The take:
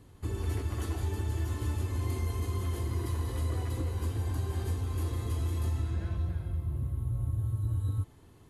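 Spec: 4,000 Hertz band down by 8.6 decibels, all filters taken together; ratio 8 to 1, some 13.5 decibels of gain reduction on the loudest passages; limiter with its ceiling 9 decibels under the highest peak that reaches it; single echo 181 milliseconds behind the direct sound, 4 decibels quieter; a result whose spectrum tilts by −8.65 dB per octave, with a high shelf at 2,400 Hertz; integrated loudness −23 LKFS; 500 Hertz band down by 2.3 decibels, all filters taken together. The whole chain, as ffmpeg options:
ffmpeg -i in.wav -af "equalizer=frequency=500:width_type=o:gain=-3,highshelf=frequency=2400:gain=-3.5,equalizer=frequency=4000:width_type=o:gain=-8,acompressor=threshold=-42dB:ratio=8,alimiter=level_in=19.5dB:limit=-24dB:level=0:latency=1,volume=-19.5dB,aecho=1:1:181:0.631,volume=26.5dB" out.wav

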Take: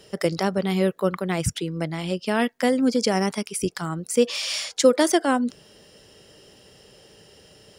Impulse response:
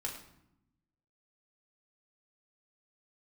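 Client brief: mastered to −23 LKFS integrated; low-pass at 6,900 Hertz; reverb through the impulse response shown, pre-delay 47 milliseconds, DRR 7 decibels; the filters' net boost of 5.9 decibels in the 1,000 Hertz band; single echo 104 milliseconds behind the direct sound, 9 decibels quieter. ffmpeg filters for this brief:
-filter_complex "[0:a]lowpass=6900,equalizer=frequency=1000:width_type=o:gain=8,aecho=1:1:104:0.355,asplit=2[link_01][link_02];[1:a]atrim=start_sample=2205,adelay=47[link_03];[link_02][link_03]afir=irnorm=-1:irlink=0,volume=-8dB[link_04];[link_01][link_04]amix=inputs=2:normalize=0,volume=-2.5dB"

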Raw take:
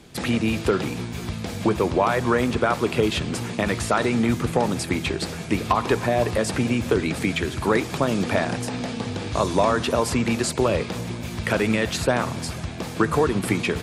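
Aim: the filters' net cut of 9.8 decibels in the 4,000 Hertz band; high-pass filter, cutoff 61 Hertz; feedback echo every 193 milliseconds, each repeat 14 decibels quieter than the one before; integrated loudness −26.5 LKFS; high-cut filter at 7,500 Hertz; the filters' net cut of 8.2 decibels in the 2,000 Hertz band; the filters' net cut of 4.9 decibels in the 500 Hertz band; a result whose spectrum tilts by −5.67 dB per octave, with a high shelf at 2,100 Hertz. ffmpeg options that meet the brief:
ffmpeg -i in.wav -af "highpass=61,lowpass=7500,equalizer=frequency=500:width_type=o:gain=-5.5,equalizer=frequency=2000:width_type=o:gain=-5.5,highshelf=frequency=2100:gain=-6.5,equalizer=frequency=4000:width_type=o:gain=-4,aecho=1:1:193|386:0.2|0.0399" out.wav

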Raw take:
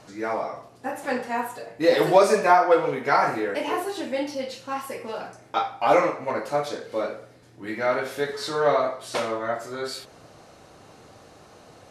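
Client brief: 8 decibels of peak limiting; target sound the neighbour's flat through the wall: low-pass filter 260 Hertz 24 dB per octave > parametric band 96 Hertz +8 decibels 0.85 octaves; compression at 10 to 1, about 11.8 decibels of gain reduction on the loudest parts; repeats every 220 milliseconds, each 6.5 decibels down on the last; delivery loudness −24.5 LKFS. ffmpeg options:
ffmpeg -i in.wav -af "acompressor=threshold=-24dB:ratio=10,alimiter=limit=-21dB:level=0:latency=1,lowpass=frequency=260:width=0.5412,lowpass=frequency=260:width=1.3066,equalizer=frequency=96:width_type=o:width=0.85:gain=8,aecho=1:1:220|440|660|880|1100|1320:0.473|0.222|0.105|0.0491|0.0231|0.0109,volume=19.5dB" out.wav

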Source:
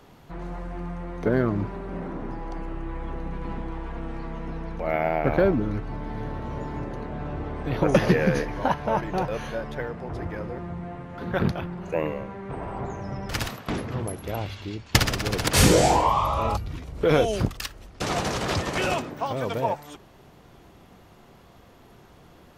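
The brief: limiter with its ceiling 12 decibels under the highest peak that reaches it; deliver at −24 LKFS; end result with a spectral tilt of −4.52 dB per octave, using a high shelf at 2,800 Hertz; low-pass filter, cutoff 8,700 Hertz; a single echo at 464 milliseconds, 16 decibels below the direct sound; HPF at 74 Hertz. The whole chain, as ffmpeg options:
ffmpeg -i in.wav -af "highpass=74,lowpass=8700,highshelf=frequency=2800:gain=5.5,alimiter=limit=-13dB:level=0:latency=1,aecho=1:1:464:0.158,volume=4.5dB" out.wav

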